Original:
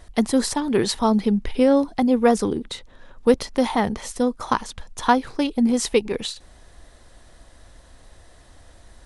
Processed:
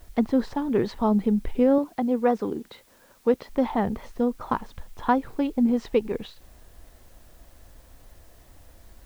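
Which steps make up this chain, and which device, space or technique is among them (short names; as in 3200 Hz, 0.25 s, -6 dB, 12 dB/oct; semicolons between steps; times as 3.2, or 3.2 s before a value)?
cassette deck with a dirty head (tape spacing loss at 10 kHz 36 dB; wow and flutter; white noise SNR 35 dB); 1.78–3.49 HPF 290 Hz 6 dB/oct; gain -1.5 dB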